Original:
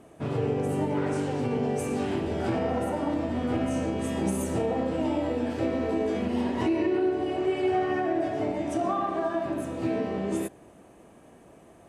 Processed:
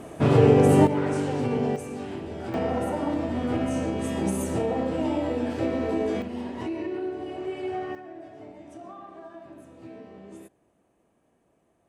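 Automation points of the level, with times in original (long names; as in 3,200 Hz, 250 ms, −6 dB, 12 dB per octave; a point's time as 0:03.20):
+11 dB
from 0:00.87 +2 dB
from 0:01.76 −6 dB
from 0:02.54 +1 dB
from 0:06.22 −6 dB
from 0:07.95 −15.5 dB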